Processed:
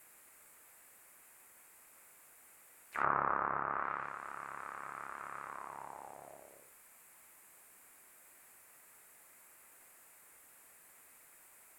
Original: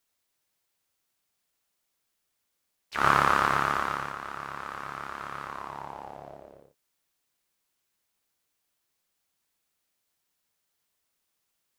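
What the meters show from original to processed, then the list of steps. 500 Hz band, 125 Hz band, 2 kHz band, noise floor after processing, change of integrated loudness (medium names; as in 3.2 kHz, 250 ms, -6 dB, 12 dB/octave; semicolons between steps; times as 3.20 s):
-9.5 dB, -15.5 dB, -11.5 dB, -62 dBFS, -11.0 dB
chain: added noise white -50 dBFS; low-pass that closes with the level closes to 1.2 kHz, closed at -20.5 dBFS; bass shelf 290 Hz -10.5 dB; crackle 39 per s -55 dBFS; high-order bell 4.3 kHz -14.5 dB 1.3 oct; trim -7 dB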